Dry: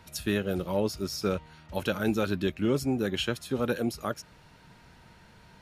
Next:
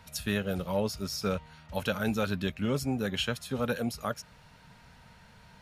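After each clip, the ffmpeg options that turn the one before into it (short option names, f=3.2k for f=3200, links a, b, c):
-af "equalizer=f=340:t=o:w=0.37:g=-13.5"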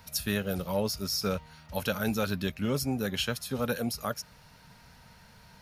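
-af "aexciter=amount=1.5:drive=6.5:freq=4.5k"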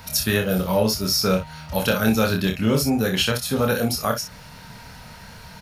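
-filter_complex "[0:a]asplit=2[a][b];[b]acompressor=threshold=-38dB:ratio=6,volume=-1dB[c];[a][c]amix=inputs=2:normalize=0,aecho=1:1:27|59:0.631|0.355,volume=6dB"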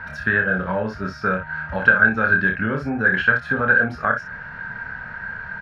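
-af "acompressor=threshold=-23dB:ratio=2.5,lowpass=f=1.6k:t=q:w=14"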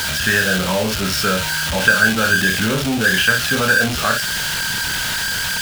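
-af "aeval=exprs='val(0)+0.5*0.0841*sgn(val(0))':c=same,highshelf=f=2.2k:t=q:w=1.5:g=8,volume=1dB"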